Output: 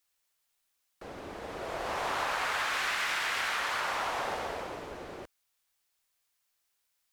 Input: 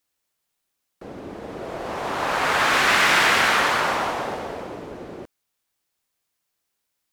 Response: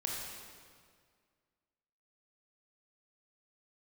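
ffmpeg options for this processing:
-af "equalizer=f=210:w=0.45:g=-11,acompressor=threshold=-28dB:ratio=16"

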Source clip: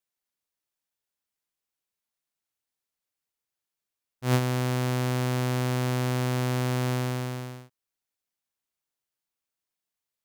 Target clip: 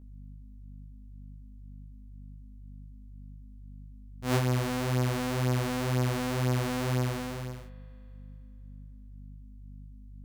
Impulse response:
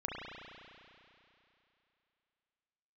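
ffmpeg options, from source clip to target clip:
-filter_complex "[0:a]aeval=exprs='val(0)+0.00562*(sin(2*PI*50*n/s)+sin(2*PI*2*50*n/s)/2+sin(2*PI*3*50*n/s)/3+sin(2*PI*4*50*n/s)/4+sin(2*PI*5*50*n/s)/5)':c=same,flanger=delay=16:depth=4.1:speed=2,asplit=2[a][b];[1:a]atrim=start_sample=2205[c];[b][c]afir=irnorm=-1:irlink=0,volume=-14.5dB[d];[a][d]amix=inputs=2:normalize=0"

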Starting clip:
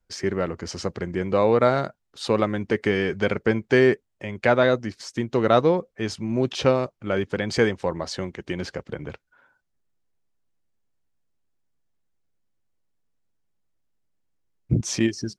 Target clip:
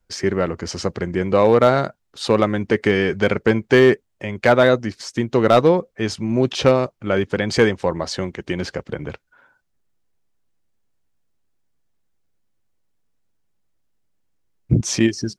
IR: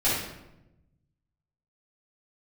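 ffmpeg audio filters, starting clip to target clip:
-af "asoftclip=type=hard:threshold=-9.5dB,volume=5dB"

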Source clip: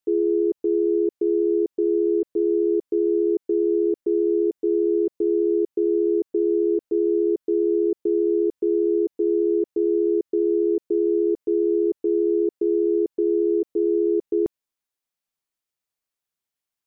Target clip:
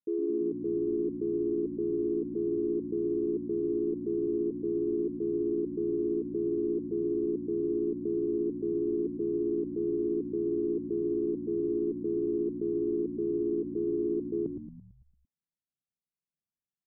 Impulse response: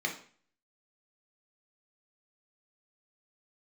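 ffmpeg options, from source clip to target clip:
-filter_complex "[0:a]acontrast=56,bandpass=f=170:t=q:w=2:csg=0,asplit=8[a][b][c][d][e][f][g][h];[b]adelay=112,afreqshift=-58,volume=-8dB[i];[c]adelay=224,afreqshift=-116,volume=-13.2dB[j];[d]adelay=336,afreqshift=-174,volume=-18.4dB[k];[e]adelay=448,afreqshift=-232,volume=-23.6dB[l];[f]adelay=560,afreqshift=-290,volume=-28.8dB[m];[g]adelay=672,afreqshift=-348,volume=-34dB[n];[h]adelay=784,afreqshift=-406,volume=-39.2dB[o];[a][i][j][k][l][m][n][o]amix=inputs=8:normalize=0,volume=-4.5dB"

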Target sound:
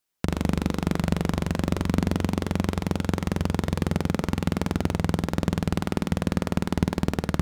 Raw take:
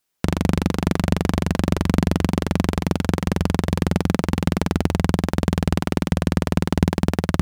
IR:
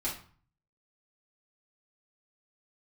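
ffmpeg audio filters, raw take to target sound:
-filter_complex "[0:a]asplit=2[a][b];[1:a]atrim=start_sample=2205,asetrate=70560,aresample=44100,adelay=52[c];[b][c]afir=irnorm=-1:irlink=0,volume=-16dB[d];[a][d]amix=inputs=2:normalize=0,volume=-5dB"

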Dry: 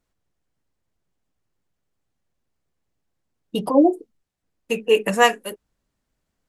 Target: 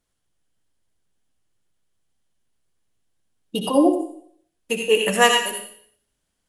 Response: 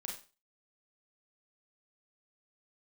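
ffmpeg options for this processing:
-filter_complex "[0:a]asplit=2[a][b];[b]equalizer=f=1.6k:t=o:w=0.33:g=4,equalizer=f=3.15k:t=o:w=0.33:g=8,equalizer=f=10k:t=o:w=0.33:g=8[c];[1:a]atrim=start_sample=2205,asetrate=23373,aresample=44100,highshelf=f=2.9k:g=9.5[d];[c][d]afir=irnorm=-1:irlink=0,volume=-3.5dB[e];[a][e]amix=inputs=2:normalize=0,volume=-5.5dB"

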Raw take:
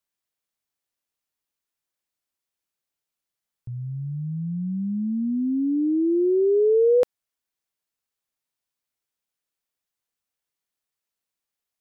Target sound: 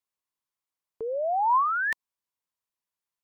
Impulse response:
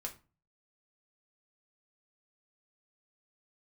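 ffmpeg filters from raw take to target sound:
-filter_complex "[0:a]equalizer=f=280:w=3.7:g=9,acrossover=split=250|750[a][b][c];[b]acompressor=threshold=-36dB:ratio=5[d];[a][d][c]amix=inputs=3:normalize=0,asetrate=160965,aresample=44100"

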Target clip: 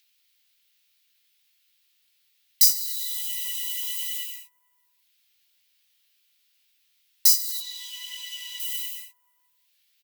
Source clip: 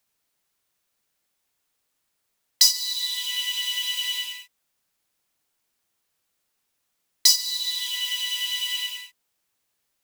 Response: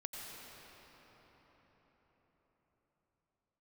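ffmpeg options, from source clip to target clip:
-filter_complex "[0:a]asettb=1/sr,asplit=3[a][b][c];[a]atrim=end=7.604[d];[b]atrim=start=7.6:end=8.6,asetpts=PTS-STARTPTS,afade=t=in:d=0.004:c=qsin,afade=t=out:st=0.996:d=0.004:c=qsin,acrossover=split=6200[e][f];[f]acompressor=threshold=-51dB:ratio=4:attack=1:release=60[g];[e][g]amix=inputs=2:normalize=0[h];[c]atrim=start=8.596[i];[d][h]acrossfade=d=0.004:c1=hsin:c2=qsin[j];[j][i]acrossfade=d=0.004:c1=qsin:c2=hsin,flanger=delay=16.5:depth=3.1:speed=1.2,acrossover=split=970|2500|4600[k][l][m][n];[k]aecho=1:1:450|608:0.355|0.282[o];[m]acompressor=mode=upward:threshold=-44dB:ratio=2.5[p];[n]aemphasis=mode=production:type=75fm[q];[o][l][p][q]amix=inputs=4:normalize=0,volume=-7.5dB"

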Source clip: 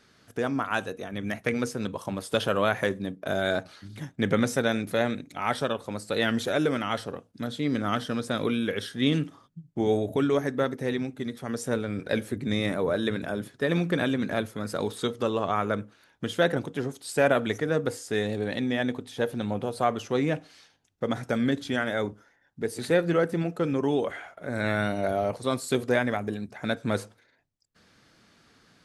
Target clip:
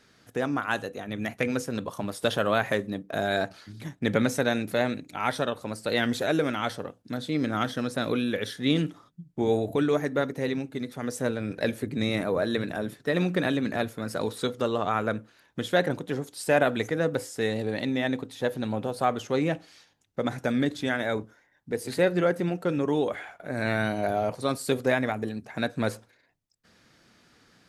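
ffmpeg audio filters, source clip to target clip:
-af "asetrate=45938,aresample=44100"

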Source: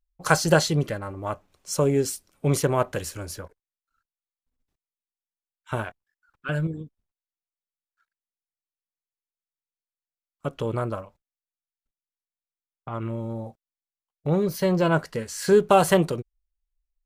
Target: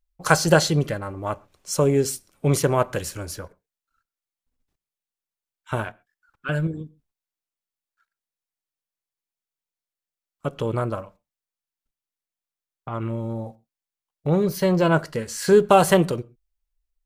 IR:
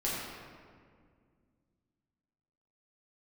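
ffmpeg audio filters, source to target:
-filter_complex "[0:a]asplit=2[a][b];[1:a]atrim=start_sample=2205,atrim=end_sample=6174[c];[b][c]afir=irnorm=-1:irlink=0,volume=-27dB[d];[a][d]amix=inputs=2:normalize=0,volume=2dB"

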